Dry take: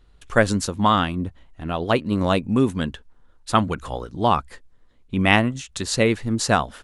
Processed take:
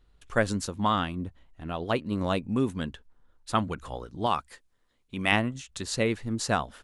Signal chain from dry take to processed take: 4.26–5.32 s: tilt EQ +2 dB/octave; trim -7.5 dB

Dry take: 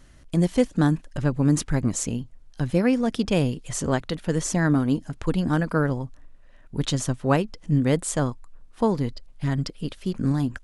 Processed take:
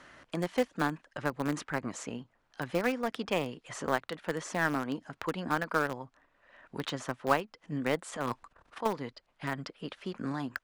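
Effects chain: 8.10–8.86 s: transient shaper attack -11 dB, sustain +12 dB; band-pass filter 1.3 kHz, Q 0.77; in parallel at -6 dB: small samples zeroed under -23.5 dBFS; on the sum: three bands compressed up and down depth 40%; trim -2 dB

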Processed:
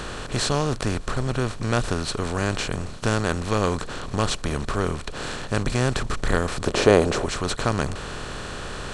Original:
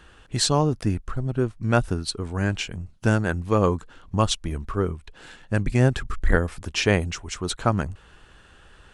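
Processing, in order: spectral levelling over time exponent 0.4; 6.67–7.26 s: peaking EQ 450 Hz +11 dB 1.8 oct; trim -6.5 dB

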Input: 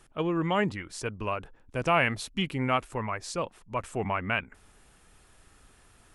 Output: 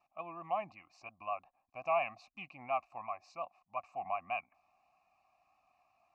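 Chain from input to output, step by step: vibrato 5.6 Hz 97 cents; vowel filter a; static phaser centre 2.2 kHz, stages 8; trim +3 dB

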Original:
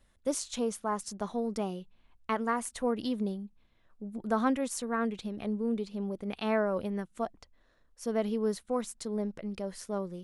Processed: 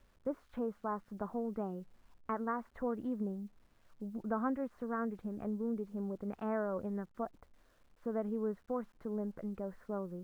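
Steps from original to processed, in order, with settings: Chebyshev low-pass 1.5 kHz, order 3; compression 1.5:1, threshold -42 dBFS, peak gain reduction 7 dB; word length cut 12-bit, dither none

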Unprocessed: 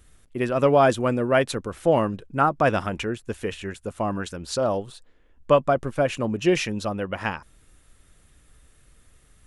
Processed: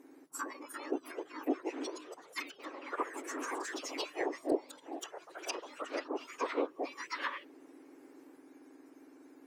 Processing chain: spectrum inverted on a logarithmic axis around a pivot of 1.7 kHz; low-pass that closes with the level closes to 500 Hz, closed at -26 dBFS; ever faster or slower copies 410 ms, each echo +3 st, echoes 3, each echo -6 dB

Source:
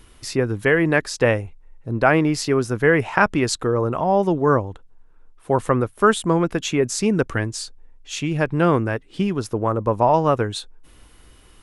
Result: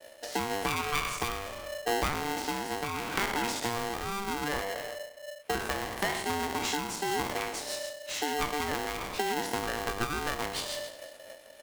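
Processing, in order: spectral sustain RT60 0.72 s; 4.61–5.55 s: graphic EQ 125/250/500/1000/2000/4000/8000 Hz +8/-6/-10/-4/+10/-11/-10 dB; expander -40 dBFS; 0.81–1.22 s: static phaser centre 1.2 kHz, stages 6; compression 12:1, threshold -28 dBFS, peak gain reduction 19.5 dB; peaking EQ 440 Hz -10.5 dB 0.35 oct; 2.04–2.54 s: hysteresis with a dead band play -31.5 dBFS; de-esser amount 80%; rotary cabinet horn 0.8 Hz, later 7 Hz, at 6.33 s; delay 354 ms -21.5 dB; polarity switched at an audio rate 590 Hz; trim +3.5 dB

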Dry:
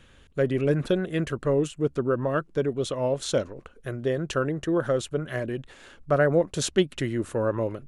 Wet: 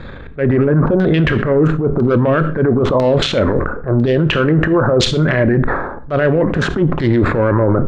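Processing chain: local Wiener filter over 15 samples; reverse; compression 10:1, threshold -31 dBFS, peak gain reduction 16 dB; reverse; transient shaper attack -10 dB, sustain +9 dB; LFO low-pass saw down 1 Hz 860–4300 Hz; on a send at -12 dB: reverberation RT60 0.45 s, pre-delay 18 ms; on the sum: loudness maximiser +28 dB; decay stretcher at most 66 dB/s; trim -4.5 dB

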